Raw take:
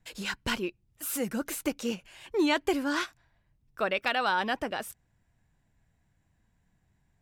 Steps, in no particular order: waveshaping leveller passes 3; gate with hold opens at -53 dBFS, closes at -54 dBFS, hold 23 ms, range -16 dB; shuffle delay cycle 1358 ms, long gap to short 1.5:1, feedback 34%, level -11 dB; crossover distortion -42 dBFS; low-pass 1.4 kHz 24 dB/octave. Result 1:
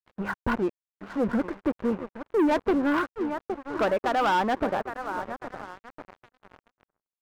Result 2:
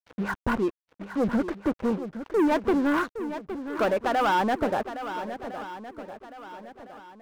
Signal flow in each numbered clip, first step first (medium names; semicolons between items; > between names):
gate with hold > shuffle delay > crossover distortion > low-pass > waveshaping leveller; low-pass > waveshaping leveller > crossover distortion > shuffle delay > gate with hold